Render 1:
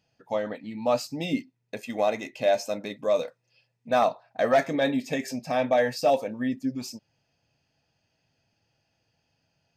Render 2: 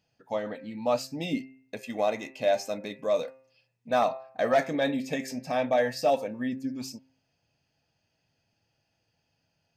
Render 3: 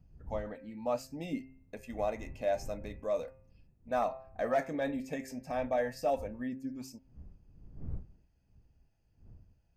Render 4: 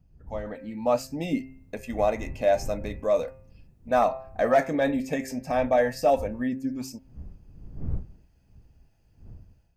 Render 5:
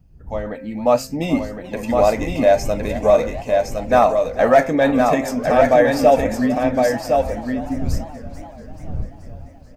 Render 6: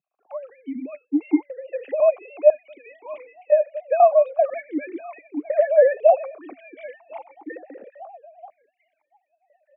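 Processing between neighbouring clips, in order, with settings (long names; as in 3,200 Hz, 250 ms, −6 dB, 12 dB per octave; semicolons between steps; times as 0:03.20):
hum removal 131.7 Hz, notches 21; level −2 dB
wind on the microphone 86 Hz −43 dBFS; parametric band 3,800 Hz −9 dB 1.1 octaves; level −6.5 dB
automatic gain control gain up to 9.5 dB
single-tap delay 1,062 ms −4 dB; feedback echo with a swinging delay time 436 ms, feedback 64%, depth 202 cents, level −16 dB; level +8 dB
three sine waves on the formant tracks; formant filter that steps through the vowels 2 Hz; level +5 dB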